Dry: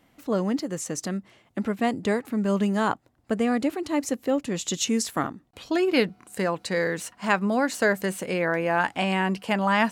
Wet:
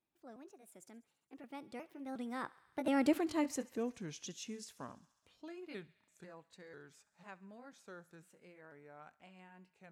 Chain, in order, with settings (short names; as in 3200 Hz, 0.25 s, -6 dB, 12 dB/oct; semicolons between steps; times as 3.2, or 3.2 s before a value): trilling pitch shifter +2 st, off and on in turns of 0.427 s; Doppler pass-by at 3.16, 55 m/s, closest 11 m; thinning echo 68 ms, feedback 78%, high-pass 710 Hz, level -21 dB; gain -4.5 dB